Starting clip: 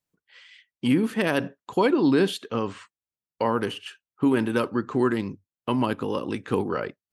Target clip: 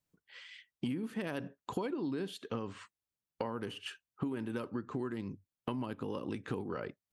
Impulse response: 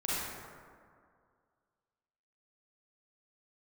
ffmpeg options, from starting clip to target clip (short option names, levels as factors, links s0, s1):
-af "lowshelf=f=280:g=5.5,acompressor=threshold=0.0224:ratio=8,volume=0.841"